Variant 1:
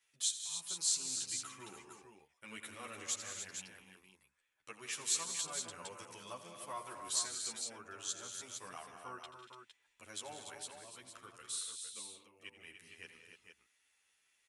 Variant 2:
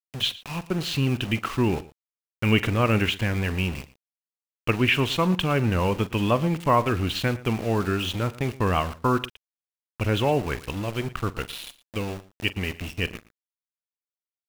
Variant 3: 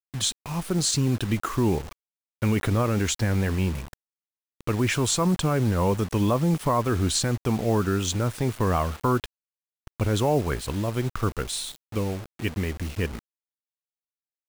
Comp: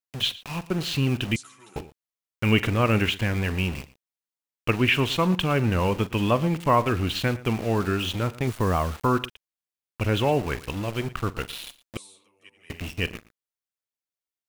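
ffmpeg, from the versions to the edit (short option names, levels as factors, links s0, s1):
-filter_complex "[0:a]asplit=2[s0][s1];[1:a]asplit=4[s2][s3][s4][s5];[s2]atrim=end=1.362[s6];[s0]atrim=start=1.358:end=1.762[s7];[s3]atrim=start=1.758:end=8.472[s8];[2:a]atrim=start=8.468:end=9.062[s9];[s4]atrim=start=9.058:end=11.972[s10];[s1]atrim=start=11.968:end=12.702[s11];[s5]atrim=start=12.698[s12];[s6][s7]acrossfade=d=0.004:c1=hsin:c2=hsin[s13];[s13][s8]acrossfade=d=0.004:c1=hsin:c2=hsin[s14];[s14][s9]acrossfade=d=0.004:c1=hsin:c2=hsin[s15];[s15][s10]acrossfade=d=0.004:c1=hsin:c2=hsin[s16];[s16][s11]acrossfade=d=0.004:c1=hsin:c2=hsin[s17];[s17][s12]acrossfade=d=0.004:c1=hsin:c2=hsin"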